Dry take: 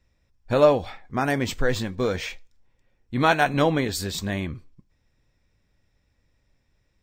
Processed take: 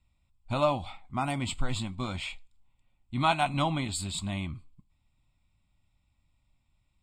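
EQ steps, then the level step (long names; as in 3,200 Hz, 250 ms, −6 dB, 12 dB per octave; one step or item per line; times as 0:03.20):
low-pass with resonance 7,800 Hz, resonance Q 4.1
phaser with its sweep stopped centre 1,700 Hz, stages 6
−3.0 dB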